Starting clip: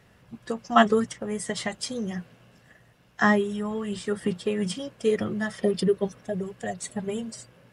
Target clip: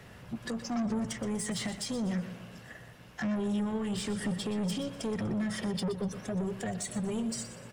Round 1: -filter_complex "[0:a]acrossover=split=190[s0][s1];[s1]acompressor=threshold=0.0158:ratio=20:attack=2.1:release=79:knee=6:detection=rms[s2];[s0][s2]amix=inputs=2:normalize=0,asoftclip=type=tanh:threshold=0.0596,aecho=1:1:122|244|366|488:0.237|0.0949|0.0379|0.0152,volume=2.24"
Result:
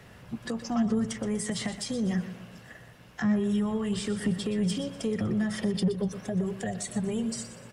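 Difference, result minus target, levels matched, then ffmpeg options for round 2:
saturation: distortion -13 dB
-filter_complex "[0:a]acrossover=split=190[s0][s1];[s1]acompressor=threshold=0.0158:ratio=20:attack=2.1:release=79:knee=6:detection=rms[s2];[s0][s2]amix=inputs=2:normalize=0,asoftclip=type=tanh:threshold=0.0168,aecho=1:1:122|244|366|488:0.237|0.0949|0.0379|0.0152,volume=2.24"

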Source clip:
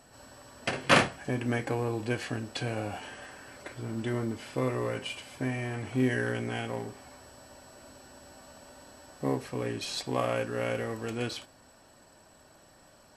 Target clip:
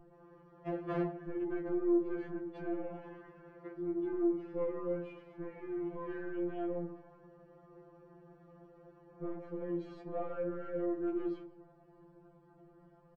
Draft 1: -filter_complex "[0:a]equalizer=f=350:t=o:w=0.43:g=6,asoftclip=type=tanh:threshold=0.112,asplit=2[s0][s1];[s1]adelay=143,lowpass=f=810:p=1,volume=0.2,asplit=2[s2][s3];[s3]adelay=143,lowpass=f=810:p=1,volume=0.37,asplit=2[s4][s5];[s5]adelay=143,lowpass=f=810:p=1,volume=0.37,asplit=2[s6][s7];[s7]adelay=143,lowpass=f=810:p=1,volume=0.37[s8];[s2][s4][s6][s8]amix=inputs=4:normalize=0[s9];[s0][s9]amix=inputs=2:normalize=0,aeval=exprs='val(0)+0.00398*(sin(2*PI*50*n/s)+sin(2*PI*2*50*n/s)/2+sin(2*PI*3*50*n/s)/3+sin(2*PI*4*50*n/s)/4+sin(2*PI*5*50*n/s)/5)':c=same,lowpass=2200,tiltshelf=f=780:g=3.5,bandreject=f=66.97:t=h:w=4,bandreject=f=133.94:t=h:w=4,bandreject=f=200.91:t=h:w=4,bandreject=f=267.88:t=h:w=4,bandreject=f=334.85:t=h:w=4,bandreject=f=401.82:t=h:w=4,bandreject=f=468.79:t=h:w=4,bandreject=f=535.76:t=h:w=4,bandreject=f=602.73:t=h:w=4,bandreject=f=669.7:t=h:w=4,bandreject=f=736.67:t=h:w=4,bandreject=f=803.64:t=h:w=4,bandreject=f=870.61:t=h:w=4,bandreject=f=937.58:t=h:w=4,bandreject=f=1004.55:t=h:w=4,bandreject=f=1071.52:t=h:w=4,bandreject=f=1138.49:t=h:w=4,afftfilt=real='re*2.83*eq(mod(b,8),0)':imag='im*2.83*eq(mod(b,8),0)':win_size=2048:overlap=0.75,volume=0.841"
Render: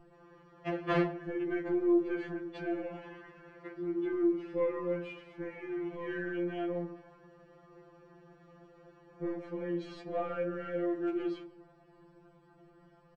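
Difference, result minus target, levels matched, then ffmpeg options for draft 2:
2 kHz band +7.0 dB; saturation: distortion -7 dB
-filter_complex "[0:a]equalizer=f=350:t=o:w=0.43:g=6,asoftclip=type=tanh:threshold=0.0422,asplit=2[s0][s1];[s1]adelay=143,lowpass=f=810:p=1,volume=0.2,asplit=2[s2][s3];[s3]adelay=143,lowpass=f=810:p=1,volume=0.37,asplit=2[s4][s5];[s5]adelay=143,lowpass=f=810:p=1,volume=0.37,asplit=2[s6][s7];[s7]adelay=143,lowpass=f=810:p=1,volume=0.37[s8];[s2][s4][s6][s8]amix=inputs=4:normalize=0[s9];[s0][s9]amix=inputs=2:normalize=0,aeval=exprs='val(0)+0.00398*(sin(2*PI*50*n/s)+sin(2*PI*2*50*n/s)/2+sin(2*PI*3*50*n/s)/3+sin(2*PI*4*50*n/s)/4+sin(2*PI*5*50*n/s)/5)':c=same,lowpass=1100,tiltshelf=f=780:g=3.5,bandreject=f=66.97:t=h:w=4,bandreject=f=133.94:t=h:w=4,bandreject=f=200.91:t=h:w=4,bandreject=f=267.88:t=h:w=4,bandreject=f=334.85:t=h:w=4,bandreject=f=401.82:t=h:w=4,bandreject=f=468.79:t=h:w=4,bandreject=f=535.76:t=h:w=4,bandreject=f=602.73:t=h:w=4,bandreject=f=669.7:t=h:w=4,bandreject=f=736.67:t=h:w=4,bandreject=f=803.64:t=h:w=4,bandreject=f=870.61:t=h:w=4,bandreject=f=937.58:t=h:w=4,bandreject=f=1004.55:t=h:w=4,bandreject=f=1071.52:t=h:w=4,bandreject=f=1138.49:t=h:w=4,afftfilt=real='re*2.83*eq(mod(b,8),0)':imag='im*2.83*eq(mod(b,8),0)':win_size=2048:overlap=0.75,volume=0.841"

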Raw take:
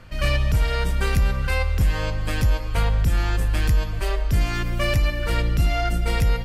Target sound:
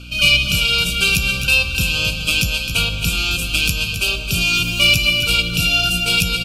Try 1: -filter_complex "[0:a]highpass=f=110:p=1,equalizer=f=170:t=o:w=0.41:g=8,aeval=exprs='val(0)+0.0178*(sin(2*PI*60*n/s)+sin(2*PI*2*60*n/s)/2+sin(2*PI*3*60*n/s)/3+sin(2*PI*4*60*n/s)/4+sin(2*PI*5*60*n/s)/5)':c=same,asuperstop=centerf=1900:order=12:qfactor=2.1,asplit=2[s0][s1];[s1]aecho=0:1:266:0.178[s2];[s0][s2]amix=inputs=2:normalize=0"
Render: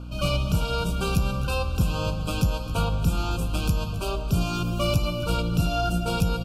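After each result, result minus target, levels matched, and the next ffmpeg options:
2 kHz band -9.5 dB; echo-to-direct -6.5 dB
-filter_complex "[0:a]highpass=f=110:p=1,equalizer=f=170:t=o:w=0.41:g=8,aeval=exprs='val(0)+0.0178*(sin(2*PI*60*n/s)+sin(2*PI*2*60*n/s)/2+sin(2*PI*3*60*n/s)/3+sin(2*PI*4*60*n/s)/4+sin(2*PI*5*60*n/s)/5)':c=same,asuperstop=centerf=1900:order=12:qfactor=2.1,highshelf=f=1500:t=q:w=3:g=14,asplit=2[s0][s1];[s1]aecho=0:1:266:0.178[s2];[s0][s2]amix=inputs=2:normalize=0"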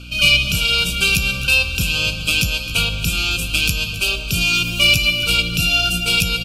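echo-to-direct -6.5 dB
-filter_complex "[0:a]highpass=f=110:p=1,equalizer=f=170:t=o:w=0.41:g=8,aeval=exprs='val(0)+0.0178*(sin(2*PI*60*n/s)+sin(2*PI*2*60*n/s)/2+sin(2*PI*3*60*n/s)/3+sin(2*PI*4*60*n/s)/4+sin(2*PI*5*60*n/s)/5)':c=same,asuperstop=centerf=1900:order=12:qfactor=2.1,highshelf=f=1500:t=q:w=3:g=14,asplit=2[s0][s1];[s1]aecho=0:1:266:0.376[s2];[s0][s2]amix=inputs=2:normalize=0"

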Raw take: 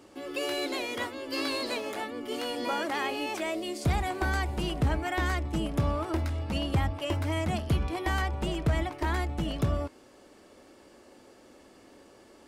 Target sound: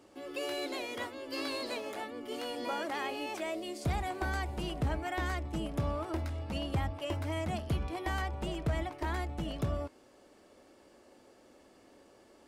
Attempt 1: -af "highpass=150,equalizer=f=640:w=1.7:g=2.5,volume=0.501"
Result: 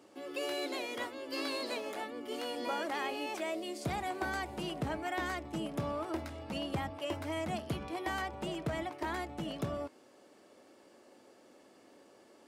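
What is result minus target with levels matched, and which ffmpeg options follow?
125 Hz band -6.0 dB
-af "equalizer=f=640:w=1.7:g=2.5,volume=0.501"

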